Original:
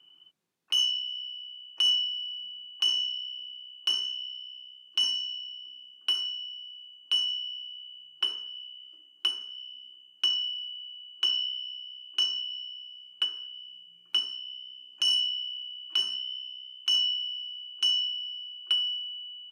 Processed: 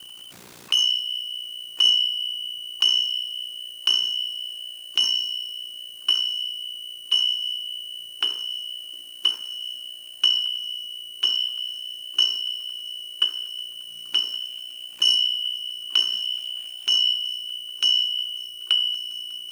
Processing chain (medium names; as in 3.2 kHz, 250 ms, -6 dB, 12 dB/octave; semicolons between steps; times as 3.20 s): jump at every zero crossing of -44.5 dBFS; ring modulator 30 Hz; thinning echo 1117 ms, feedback 80%, level -21 dB; trim +8.5 dB